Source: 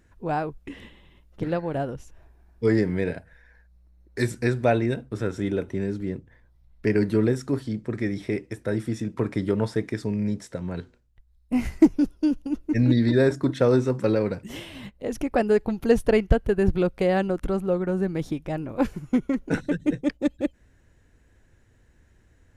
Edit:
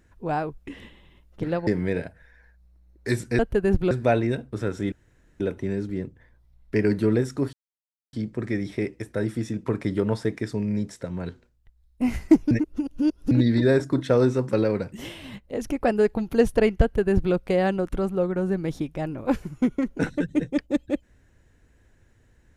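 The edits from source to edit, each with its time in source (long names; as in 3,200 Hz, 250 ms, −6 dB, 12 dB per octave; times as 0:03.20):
0:01.67–0:02.78: remove
0:05.51: splice in room tone 0.48 s
0:07.64: splice in silence 0.60 s
0:12.02–0:12.82: reverse
0:16.33–0:16.85: duplicate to 0:04.50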